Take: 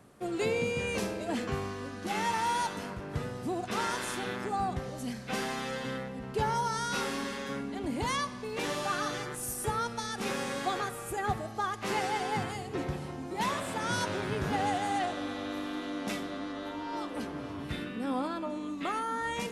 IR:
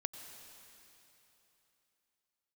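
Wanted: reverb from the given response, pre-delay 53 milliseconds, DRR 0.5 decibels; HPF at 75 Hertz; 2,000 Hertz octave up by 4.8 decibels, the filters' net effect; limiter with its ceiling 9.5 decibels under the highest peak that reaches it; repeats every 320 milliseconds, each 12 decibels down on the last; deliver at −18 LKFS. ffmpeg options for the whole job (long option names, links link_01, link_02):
-filter_complex "[0:a]highpass=75,equalizer=frequency=2000:width_type=o:gain=6,alimiter=level_in=2dB:limit=-24dB:level=0:latency=1,volume=-2dB,aecho=1:1:320|640|960:0.251|0.0628|0.0157,asplit=2[link_01][link_02];[1:a]atrim=start_sample=2205,adelay=53[link_03];[link_02][link_03]afir=irnorm=-1:irlink=0,volume=0.5dB[link_04];[link_01][link_04]amix=inputs=2:normalize=0,volume=14dB"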